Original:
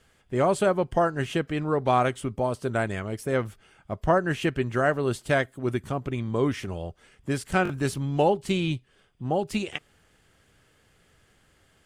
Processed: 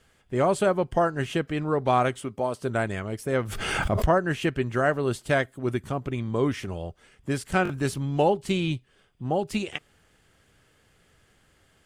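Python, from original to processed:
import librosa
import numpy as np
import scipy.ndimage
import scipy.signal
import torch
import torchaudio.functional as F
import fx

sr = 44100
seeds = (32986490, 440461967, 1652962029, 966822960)

y = fx.highpass(x, sr, hz=230.0, slope=6, at=(2.19, 2.6))
y = fx.pre_swell(y, sr, db_per_s=27.0, at=(3.43, 4.05), fade=0.02)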